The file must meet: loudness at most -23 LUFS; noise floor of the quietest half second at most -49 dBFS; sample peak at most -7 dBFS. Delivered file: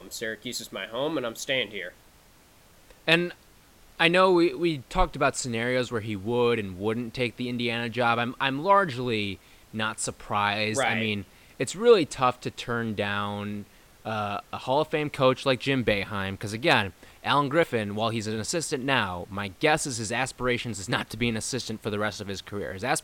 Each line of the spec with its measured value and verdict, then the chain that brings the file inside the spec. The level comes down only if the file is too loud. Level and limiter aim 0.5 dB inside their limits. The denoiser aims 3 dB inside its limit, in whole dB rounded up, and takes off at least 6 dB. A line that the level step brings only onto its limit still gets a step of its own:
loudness -26.5 LUFS: OK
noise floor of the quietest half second -56 dBFS: OK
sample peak -5.5 dBFS: fail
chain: limiter -7.5 dBFS

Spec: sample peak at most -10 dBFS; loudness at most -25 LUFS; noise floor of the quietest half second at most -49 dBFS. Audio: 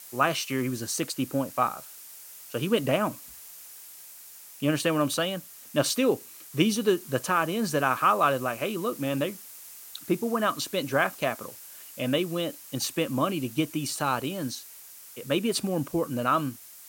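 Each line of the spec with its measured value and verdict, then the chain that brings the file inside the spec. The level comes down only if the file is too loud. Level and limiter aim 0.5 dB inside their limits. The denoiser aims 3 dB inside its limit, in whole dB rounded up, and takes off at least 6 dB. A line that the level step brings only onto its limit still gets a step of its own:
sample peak -8.0 dBFS: fail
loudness -27.5 LUFS: OK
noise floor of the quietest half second -47 dBFS: fail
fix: denoiser 6 dB, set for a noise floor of -47 dBFS; limiter -10.5 dBFS

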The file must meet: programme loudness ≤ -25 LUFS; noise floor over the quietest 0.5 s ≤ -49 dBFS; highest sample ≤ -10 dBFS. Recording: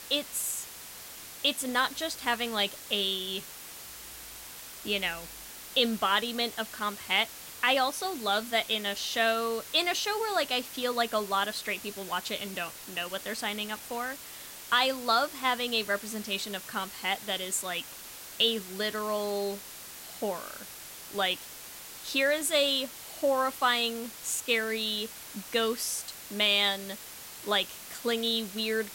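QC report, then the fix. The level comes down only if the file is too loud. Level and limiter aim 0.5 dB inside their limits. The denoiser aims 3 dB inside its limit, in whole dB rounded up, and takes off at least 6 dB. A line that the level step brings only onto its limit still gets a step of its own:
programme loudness -29.5 LUFS: OK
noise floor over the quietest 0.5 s -45 dBFS: fail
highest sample -12.5 dBFS: OK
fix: denoiser 7 dB, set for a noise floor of -45 dBFS

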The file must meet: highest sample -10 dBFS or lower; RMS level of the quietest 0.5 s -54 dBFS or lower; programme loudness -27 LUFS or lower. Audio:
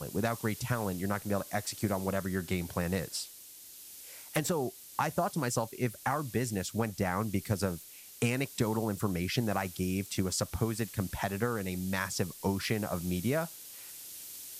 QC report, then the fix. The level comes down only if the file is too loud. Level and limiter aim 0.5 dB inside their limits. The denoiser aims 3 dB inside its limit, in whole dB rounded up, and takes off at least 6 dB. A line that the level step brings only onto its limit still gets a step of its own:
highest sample -16.0 dBFS: OK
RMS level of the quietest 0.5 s -51 dBFS: fail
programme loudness -33.5 LUFS: OK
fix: denoiser 6 dB, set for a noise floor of -51 dBFS

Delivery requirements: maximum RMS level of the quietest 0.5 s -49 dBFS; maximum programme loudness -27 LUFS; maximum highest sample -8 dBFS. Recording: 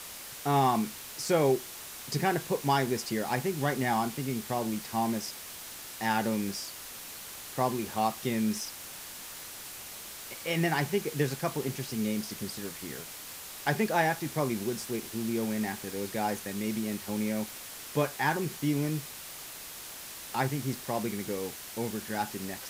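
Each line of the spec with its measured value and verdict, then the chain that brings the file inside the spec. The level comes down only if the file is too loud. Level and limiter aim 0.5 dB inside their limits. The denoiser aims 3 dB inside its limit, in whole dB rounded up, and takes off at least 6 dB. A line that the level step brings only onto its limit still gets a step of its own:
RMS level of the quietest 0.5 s -44 dBFS: fail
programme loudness -32.0 LUFS: OK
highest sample -14.5 dBFS: OK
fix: denoiser 8 dB, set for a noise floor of -44 dBFS

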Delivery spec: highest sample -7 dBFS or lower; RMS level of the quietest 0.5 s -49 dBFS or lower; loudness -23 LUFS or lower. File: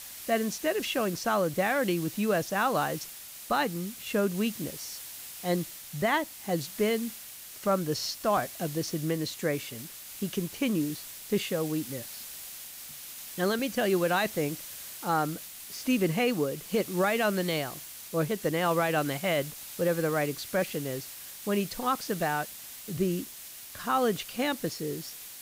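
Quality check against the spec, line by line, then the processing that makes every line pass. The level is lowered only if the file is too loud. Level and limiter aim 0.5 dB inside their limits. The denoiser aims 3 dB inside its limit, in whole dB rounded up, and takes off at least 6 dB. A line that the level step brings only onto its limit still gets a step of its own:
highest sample -15.0 dBFS: OK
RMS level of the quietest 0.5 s -45 dBFS: fail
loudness -30.0 LUFS: OK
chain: denoiser 7 dB, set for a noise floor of -45 dBFS

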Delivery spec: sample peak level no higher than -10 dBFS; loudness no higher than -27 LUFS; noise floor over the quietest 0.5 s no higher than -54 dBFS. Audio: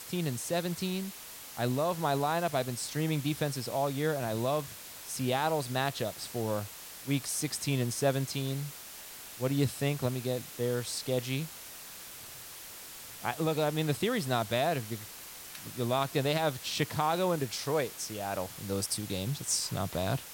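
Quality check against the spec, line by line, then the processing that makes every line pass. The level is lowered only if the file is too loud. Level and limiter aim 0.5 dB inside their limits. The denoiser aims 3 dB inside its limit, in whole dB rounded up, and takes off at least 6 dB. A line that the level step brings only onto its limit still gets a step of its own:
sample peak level -15.5 dBFS: OK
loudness -32.0 LUFS: OK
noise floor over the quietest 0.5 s -46 dBFS: fail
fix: denoiser 11 dB, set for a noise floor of -46 dBFS

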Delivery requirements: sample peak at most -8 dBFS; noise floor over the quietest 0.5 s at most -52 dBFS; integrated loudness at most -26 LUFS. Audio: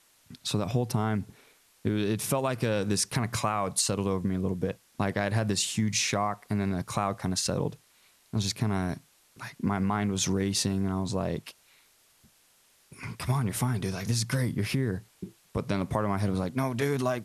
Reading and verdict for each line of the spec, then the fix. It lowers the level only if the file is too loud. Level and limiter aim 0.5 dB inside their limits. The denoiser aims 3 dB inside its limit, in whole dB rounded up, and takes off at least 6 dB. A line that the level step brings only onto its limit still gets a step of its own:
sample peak -13.0 dBFS: OK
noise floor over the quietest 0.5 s -64 dBFS: OK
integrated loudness -29.5 LUFS: OK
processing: none

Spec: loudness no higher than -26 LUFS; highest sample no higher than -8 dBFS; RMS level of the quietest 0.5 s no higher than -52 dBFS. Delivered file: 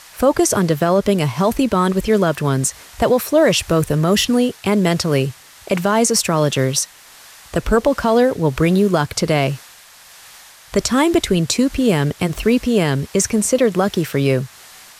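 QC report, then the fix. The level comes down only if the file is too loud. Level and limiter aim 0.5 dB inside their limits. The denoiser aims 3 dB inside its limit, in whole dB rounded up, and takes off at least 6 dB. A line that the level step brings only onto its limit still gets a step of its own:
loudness -17.0 LUFS: fail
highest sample -4.5 dBFS: fail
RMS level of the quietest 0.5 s -44 dBFS: fail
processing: gain -9.5 dB

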